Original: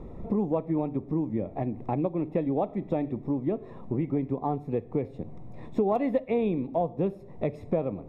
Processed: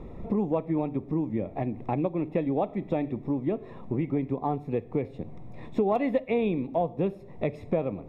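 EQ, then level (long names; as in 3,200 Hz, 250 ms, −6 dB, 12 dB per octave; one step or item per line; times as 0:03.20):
parametric band 2,700 Hz +6 dB 1.5 octaves
0.0 dB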